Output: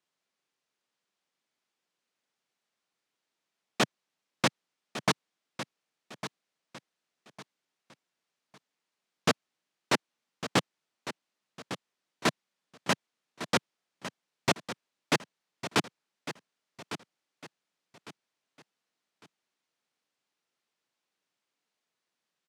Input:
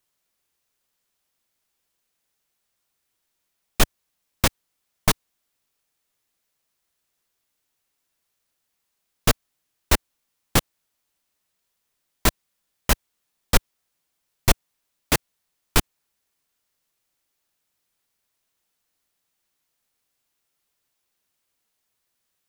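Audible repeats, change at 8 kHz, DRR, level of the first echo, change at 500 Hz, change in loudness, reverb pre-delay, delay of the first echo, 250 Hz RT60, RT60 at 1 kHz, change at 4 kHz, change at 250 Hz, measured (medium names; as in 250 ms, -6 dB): 3, -10.5 dB, no reverb, -12.0 dB, -3.0 dB, -8.5 dB, no reverb, 1154 ms, no reverb, no reverb, -5.0 dB, -3.0 dB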